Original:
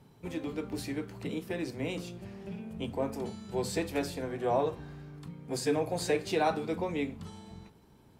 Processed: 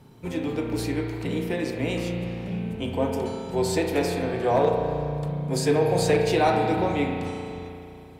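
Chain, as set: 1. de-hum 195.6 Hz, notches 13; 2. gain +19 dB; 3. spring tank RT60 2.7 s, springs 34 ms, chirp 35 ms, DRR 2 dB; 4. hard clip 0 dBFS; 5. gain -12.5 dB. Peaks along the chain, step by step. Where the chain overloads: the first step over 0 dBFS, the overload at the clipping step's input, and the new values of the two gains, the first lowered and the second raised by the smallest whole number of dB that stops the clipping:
-15.5, +3.5, +5.0, 0.0, -12.5 dBFS; step 2, 5.0 dB; step 2 +14 dB, step 5 -7.5 dB

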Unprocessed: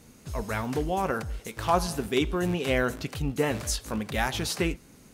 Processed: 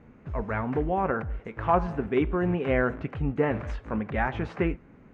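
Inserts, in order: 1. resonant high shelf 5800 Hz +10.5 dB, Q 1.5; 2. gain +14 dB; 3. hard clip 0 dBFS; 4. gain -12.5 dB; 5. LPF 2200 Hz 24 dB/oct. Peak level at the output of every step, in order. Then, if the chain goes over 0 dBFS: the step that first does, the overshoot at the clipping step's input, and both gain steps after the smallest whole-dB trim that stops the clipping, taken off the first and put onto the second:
-6.0, +8.0, 0.0, -12.5, -11.5 dBFS; step 2, 8.0 dB; step 2 +6 dB, step 4 -4.5 dB

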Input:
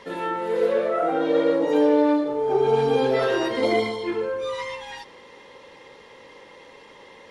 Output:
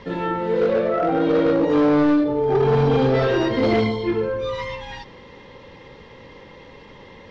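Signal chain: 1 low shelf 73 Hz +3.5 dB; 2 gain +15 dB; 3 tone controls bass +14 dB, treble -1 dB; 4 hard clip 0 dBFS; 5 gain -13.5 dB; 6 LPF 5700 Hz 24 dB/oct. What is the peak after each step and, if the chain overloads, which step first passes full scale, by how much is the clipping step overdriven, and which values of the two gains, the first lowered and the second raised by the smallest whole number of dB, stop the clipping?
-8.5, +6.5, +10.0, 0.0, -13.5, -13.0 dBFS; step 2, 10.0 dB; step 2 +5 dB, step 5 -3.5 dB

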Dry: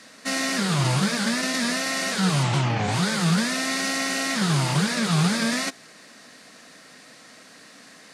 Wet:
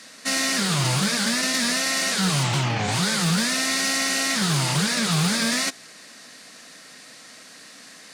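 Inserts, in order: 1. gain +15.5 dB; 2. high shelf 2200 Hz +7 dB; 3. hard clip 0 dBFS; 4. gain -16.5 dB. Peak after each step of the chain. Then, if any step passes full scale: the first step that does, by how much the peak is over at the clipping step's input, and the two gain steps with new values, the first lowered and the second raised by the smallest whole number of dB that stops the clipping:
+5.0, +7.5, 0.0, -16.5 dBFS; step 1, 7.5 dB; step 1 +7.5 dB, step 4 -8.5 dB

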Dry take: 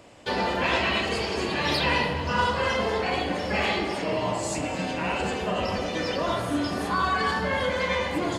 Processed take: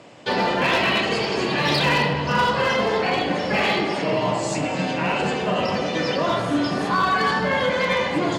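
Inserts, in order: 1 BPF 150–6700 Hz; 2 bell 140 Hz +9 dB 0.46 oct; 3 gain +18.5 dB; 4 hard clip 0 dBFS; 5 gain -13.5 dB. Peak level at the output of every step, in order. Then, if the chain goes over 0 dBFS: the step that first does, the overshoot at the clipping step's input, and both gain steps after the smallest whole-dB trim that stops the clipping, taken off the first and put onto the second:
-11.5, -11.0, +7.5, 0.0, -13.5 dBFS; step 3, 7.5 dB; step 3 +10.5 dB, step 5 -5.5 dB

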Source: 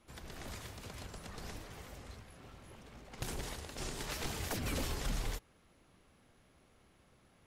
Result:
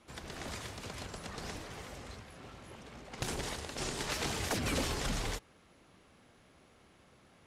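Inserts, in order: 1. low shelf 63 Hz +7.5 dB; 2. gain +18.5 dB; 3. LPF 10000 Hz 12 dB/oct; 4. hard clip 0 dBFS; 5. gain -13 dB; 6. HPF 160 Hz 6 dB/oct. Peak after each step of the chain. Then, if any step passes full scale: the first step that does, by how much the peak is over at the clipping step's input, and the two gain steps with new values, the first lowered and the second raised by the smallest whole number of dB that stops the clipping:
-22.0, -3.5, -3.5, -3.5, -16.5, -20.5 dBFS; no overload

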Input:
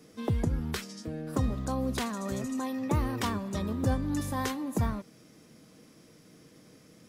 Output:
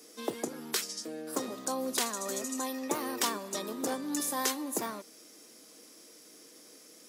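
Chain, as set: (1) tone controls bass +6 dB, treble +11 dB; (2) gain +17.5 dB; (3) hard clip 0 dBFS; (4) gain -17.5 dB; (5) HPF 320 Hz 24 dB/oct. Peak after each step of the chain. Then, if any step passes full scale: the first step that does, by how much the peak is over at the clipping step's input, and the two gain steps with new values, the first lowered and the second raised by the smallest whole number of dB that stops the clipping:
-11.5, +6.0, 0.0, -17.5, -14.5 dBFS; step 2, 6.0 dB; step 2 +11.5 dB, step 4 -11.5 dB

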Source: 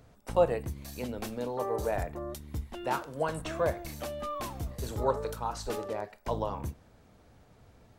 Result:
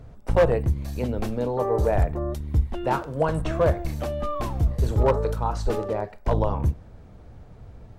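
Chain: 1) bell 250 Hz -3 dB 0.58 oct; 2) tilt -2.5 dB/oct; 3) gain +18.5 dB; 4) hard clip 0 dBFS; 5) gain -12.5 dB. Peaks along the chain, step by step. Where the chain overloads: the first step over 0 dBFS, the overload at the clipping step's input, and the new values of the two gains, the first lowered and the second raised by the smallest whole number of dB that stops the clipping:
-12.5, -9.5, +9.0, 0.0, -12.5 dBFS; step 3, 9.0 dB; step 3 +9.5 dB, step 5 -3.5 dB

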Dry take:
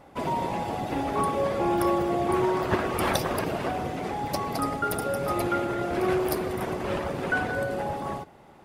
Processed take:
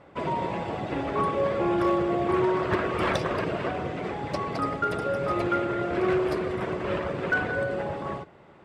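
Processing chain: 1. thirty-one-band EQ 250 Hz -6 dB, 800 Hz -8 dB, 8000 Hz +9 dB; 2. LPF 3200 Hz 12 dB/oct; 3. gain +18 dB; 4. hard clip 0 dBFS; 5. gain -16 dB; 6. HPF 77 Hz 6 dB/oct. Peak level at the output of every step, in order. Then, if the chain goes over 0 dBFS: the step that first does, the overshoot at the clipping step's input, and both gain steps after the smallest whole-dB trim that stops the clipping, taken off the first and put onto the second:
-8.0, -10.5, +7.5, 0.0, -16.0, -13.5 dBFS; step 3, 7.5 dB; step 3 +10 dB, step 5 -8 dB

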